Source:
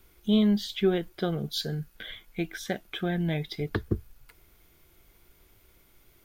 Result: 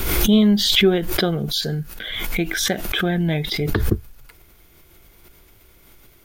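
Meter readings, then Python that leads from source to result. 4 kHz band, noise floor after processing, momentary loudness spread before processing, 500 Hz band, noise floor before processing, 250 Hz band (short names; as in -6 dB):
+14.5 dB, -52 dBFS, 12 LU, +8.0 dB, -62 dBFS, +8.0 dB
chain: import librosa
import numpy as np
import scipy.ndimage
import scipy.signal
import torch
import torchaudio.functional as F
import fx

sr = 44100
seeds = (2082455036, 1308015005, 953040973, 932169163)

y = fx.pre_swell(x, sr, db_per_s=35.0)
y = y * 10.0 ** (7.5 / 20.0)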